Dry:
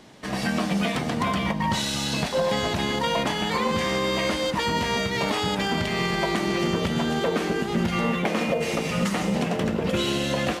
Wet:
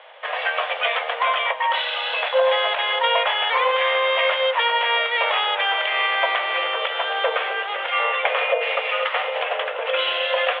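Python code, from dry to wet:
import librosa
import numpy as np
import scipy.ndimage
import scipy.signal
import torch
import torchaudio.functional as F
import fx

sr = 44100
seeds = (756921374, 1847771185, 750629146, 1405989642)

y = scipy.signal.sosfilt(scipy.signal.cheby1(5, 1.0, [500.0, 3400.0], 'bandpass', fs=sr, output='sos'), x)
y = fx.dynamic_eq(y, sr, hz=680.0, q=1.3, threshold_db=-39.0, ratio=4.0, max_db=-4)
y = y * 10.0 ** (9.0 / 20.0)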